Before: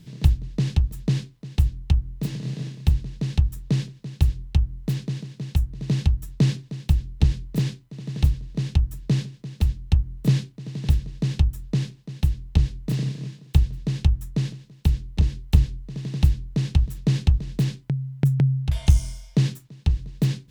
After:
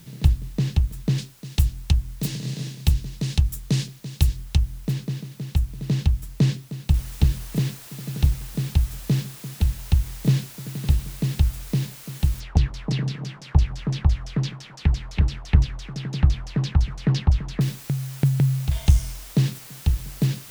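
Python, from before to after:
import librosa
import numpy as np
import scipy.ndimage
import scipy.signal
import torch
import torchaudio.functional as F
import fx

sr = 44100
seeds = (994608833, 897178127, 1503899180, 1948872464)

y = fx.high_shelf(x, sr, hz=3300.0, db=12.0, at=(1.18, 4.87))
y = fx.noise_floor_step(y, sr, seeds[0], at_s=6.94, before_db=-54, after_db=-43, tilt_db=0.0)
y = fx.filter_lfo_lowpass(y, sr, shape='saw_down', hz=5.9, low_hz=650.0, high_hz=6300.0, q=3.6, at=(12.4, 17.61))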